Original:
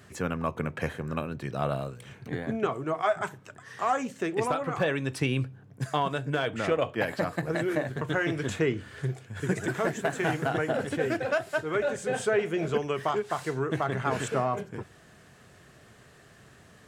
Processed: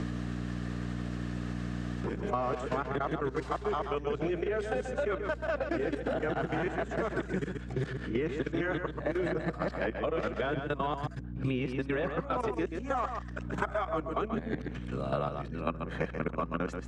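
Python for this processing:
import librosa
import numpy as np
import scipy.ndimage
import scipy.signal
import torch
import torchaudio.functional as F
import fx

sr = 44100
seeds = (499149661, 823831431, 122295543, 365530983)

y = np.flip(x).copy()
y = fx.level_steps(y, sr, step_db=15)
y = scipy.signal.sosfilt(scipy.signal.butter(2, 180.0, 'highpass', fs=sr, output='sos'), y)
y = fx.peak_eq(y, sr, hz=1200.0, db=4.0, octaves=0.25)
y = y + 10.0 ** (-8.0 / 20.0) * np.pad(y, (int(133 * sr / 1000.0), 0))[:len(y)]
y = fx.add_hum(y, sr, base_hz=60, snr_db=13)
y = scipy.signal.sosfilt(scipy.signal.butter(2, 5300.0, 'lowpass', fs=sr, output='sos'), y)
y = fx.low_shelf(y, sr, hz=500.0, db=6.0)
y = fx.band_squash(y, sr, depth_pct=100)
y = y * 10.0 ** (-3.5 / 20.0)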